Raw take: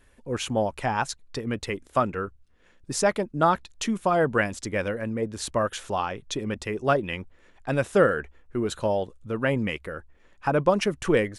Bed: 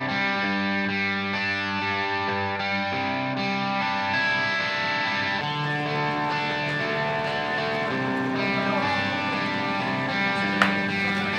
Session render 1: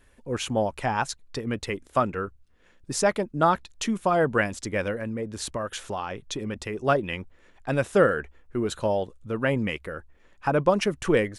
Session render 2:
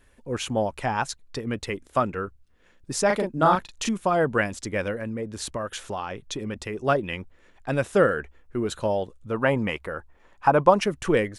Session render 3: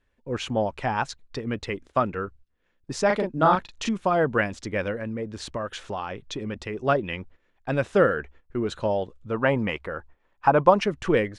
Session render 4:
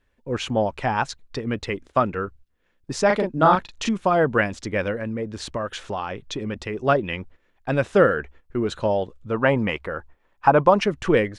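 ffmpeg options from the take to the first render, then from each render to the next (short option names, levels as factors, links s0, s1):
-filter_complex "[0:a]asettb=1/sr,asplit=3[s0][s1][s2];[s0]atrim=end=4.974[s3];[s1]atrim=start=4.97:end=6.84,asetpts=PTS-STARTPTS,afade=t=in:d=0.004:c=qsin,afade=t=out:st=1.866:d=0.004:c=qsin,acompressor=threshold=0.0447:ratio=3:attack=3.2:release=140:knee=1:detection=peak[s4];[s2]atrim=start=6.836[s5];[s3][s4]acrossfade=d=0.004:c1=hsin:c2=qsin[s6];[s6][s5]acrossfade=d=0.004:c1=qsin:c2=hsin"
-filter_complex "[0:a]asettb=1/sr,asplit=3[s0][s1][s2];[s0]atrim=end=3.064[s3];[s1]atrim=start=3.06:end=3.89,asetpts=PTS-STARTPTS,afade=t=in:d=0.004:c=qsin,afade=t=out:st=0.826:d=0.004:c=qsin,asplit=2[s4][s5];[s5]adelay=38,volume=0.75[s6];[s4][s6]amix=inputs=2:normalize=0,atrim=end_sample=36603[s7];[s2]atrim=start=3.886[s8];[s3][s7]acrossfade=d=0.004:c1=hsin:c2=qsin[s9];[s9][s8]acrossfade=d=0.004:c1=qsin:c2=hsin,asettb=1/sr,asplit=3[s10][s11][s12];[s10]atrim=end=9.314[s13];[s11]atrim=start=9.31:end=10.79,asetpts=PTS-STARTPTS,afade=t=in:d=0.004:c=qsin,afade=t=out:st=1.476:d=0.004:c=qsin,equalizer=f=900:t=o:w=1.1:g=8.5[s14];[s12]atrim=start=10.786[s15];[s13][s14]acrossfade=d=0.004:c1=hsin:c2=qsin[s16];[s16][s15]acrossfade=d=0.004:c1=qsin:c2=hsin"
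-af "lowpass=5100,agate=range=0.251:threshold=0.00447:ratio=16:detection=peak"
-af "volume=1.41,alimiter=limit=0.708:level=0:latency=1"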